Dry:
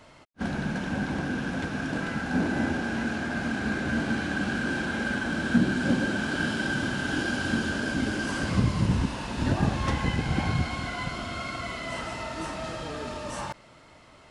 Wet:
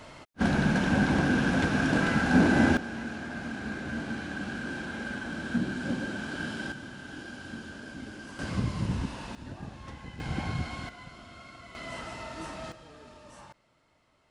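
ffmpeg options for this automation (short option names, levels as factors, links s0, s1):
-af "asetnsamples=n=441:p=0,asendcmd='2.77 volume volume -7dB;6.72 volume volume -14dB;8.39 volume volume -6dB;9.35 volume volume -17dB;10.2 volume volume -6dB;10.89 volume volume -14.5dB;11.75 volume volume -5.5dB;12.72 volume volume -15.5dB',volume=1.78"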